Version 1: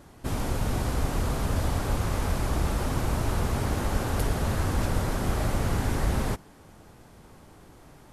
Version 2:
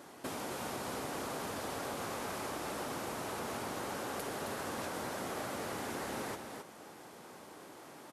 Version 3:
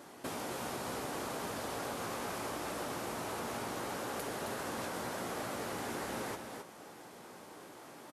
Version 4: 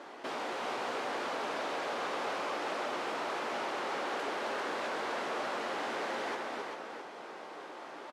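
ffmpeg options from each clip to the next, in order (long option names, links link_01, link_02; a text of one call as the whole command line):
ffmpeg -i in.wav -filter_complex "[0:a]highpass=300,acompressor=threshold=-40dB:ratio=6,asplit=2[link_01][link_02];[link_02]aecho=0:1:266:0.501[link_03];[link_01][link_03]amix=inputs=2:normalize=0,volume=2dB" out.wav
ffmpeg -i in.wav -filter_complex "[0:a]asplit=2[link_01][link_02];[link_02]adelay=17,volume=-11.5dB[link_03];[link_01][link_03]amix=inputs=2:normalize=0" out.wav
ffmpeg -i in.wav -filter_complex "[0:a]asplit=2[link_01][link_02];[link_02]aeval=exprs='(mod(59.6*val(0)+1,2)-1)/59.6':channel_layout=same,volume=-4dB[link_03];[link_01][link_03]amix=inputs=2:normalize=0,highpass=380,lowpass=3600,aecho=1:1:394:0.531,volume=2.5dB" out.wav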